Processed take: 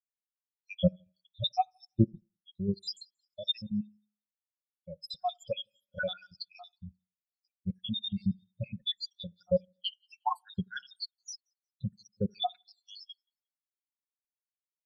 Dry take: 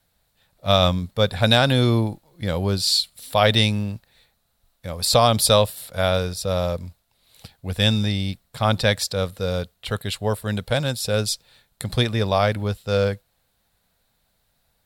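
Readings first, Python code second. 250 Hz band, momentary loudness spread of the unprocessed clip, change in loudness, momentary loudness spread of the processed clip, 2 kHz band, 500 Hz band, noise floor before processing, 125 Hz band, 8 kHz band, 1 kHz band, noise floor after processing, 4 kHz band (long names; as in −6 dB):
−9.5 dB, 13 LU, −13.5 dB, 18 LU, −18.0 dB, −16.5 dB, −69 dBFS, −15.5 dB, −25.0 dB, −12.0 dB, below −85 dBFS, −14.5 dB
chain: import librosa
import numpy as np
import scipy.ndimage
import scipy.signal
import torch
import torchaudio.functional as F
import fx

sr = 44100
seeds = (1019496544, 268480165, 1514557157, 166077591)

y = fx.spec_dropout(x, sr, seeds[0], share_pct=84)
y = fx.band_shelf(y, sr, hz=4500.0, db=9.5, octaves=1.7)
y = y + 0.43 * np.pad(y, (int(5.5 * sr / 1000.0), 0))[:len(y)]
y = fx.level_steps(y, sr, step_db=10)
y = 10.0 ** (-22.0 / 20.0) * np.tanh(y / 10.0 ** (-22.0 / 20.0))
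y = fx.echo_split(y, sr, split_hz=2700.0, low_ms=81, high_ms=178, feedback_pct=52, wet_db=-15.5)
y = fx.rev_spring(y, sr, rt60_s=1.1, pass_ms=(38,), chirp_ms=20, drr_db=17.5)
y = fx.rider(y, sr, range_db=5, speed_s=0.5)
y = fx.spectral_expand(y, sr, expansion=2.5)
y = y * 10.0 ** (6.0 / 20.0)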